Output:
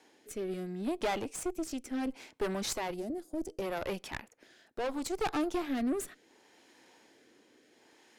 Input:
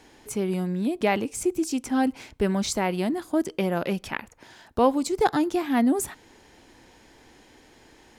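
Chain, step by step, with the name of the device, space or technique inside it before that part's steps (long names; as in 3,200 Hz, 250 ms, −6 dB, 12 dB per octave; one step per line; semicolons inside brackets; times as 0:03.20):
high-pass filter 270 Hz 12 dB per octave
overdriven rotary cabinet (tube saturation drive 26 dB, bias 0.8; rotating-speaker cabinet horn 0.7 Hz)
0:02.94–0:03.62: flat-topped bell 1,900 Hz −10.5 dB 2.4 octaves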